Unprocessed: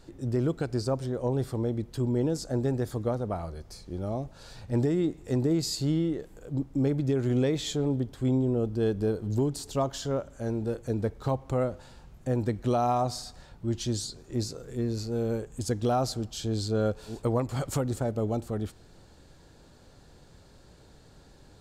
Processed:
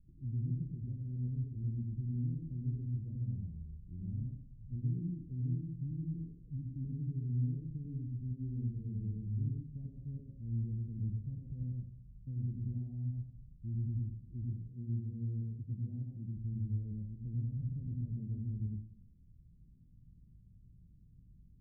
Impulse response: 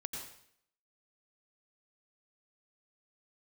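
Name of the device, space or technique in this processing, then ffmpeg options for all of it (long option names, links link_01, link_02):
club heard from the street: -filter_complex "[0:a]alimiter=limit=-22dB:level=0:latency=1:release=107,lowpass=frequency=190:width=0.5412,lowpass=frequency=190:width=1.3066[link_01];[1:a]atrim=start_sample=2205[link_02];[link_01][link_02]afir=irnorm=-1:irlink=0,asettb=1/sr,asplit=3[link_03][link_04][link_05];[link_03]atrim=end=14.694[link_06];[link_04]atrim=start=14.69:end=16.37,asetpts=PTS-STARTPTS,afade=type=in:duration=0.004:curve=qsin,afade=type=out:start_time=1.676:duration=0.004:curve=qsin,highpass=96[link_07];[link_05]atrim=start=16.366[link_08];[link_06][link_07]acrossfade=duration=0.004:curve1=hsin:curve2=qsin[link_09];[link_09][link_08]acrossfade=duration=0.004:curve1=qsin:curve2=hsin,volume=-4dB"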